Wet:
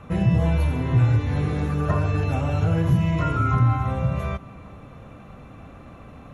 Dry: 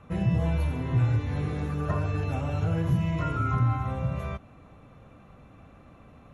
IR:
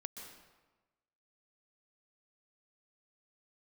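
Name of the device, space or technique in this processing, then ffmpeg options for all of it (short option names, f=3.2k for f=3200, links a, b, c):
ducked reverb: -filter_complex "[0:a]asplit=3[a][b][c];[1:a]atrim=start_sample=2205[d];[b][d]afir=irnorm=-1:irlink=0[e];[c]apad=whole_len=279581[f];[e][f]sidechaincompress=threshold=-39dB:ratio=8:attack=16:release=456,volume=-2dB[g];[a][g]amix=inputs=2:normalize=0,volume=5dB"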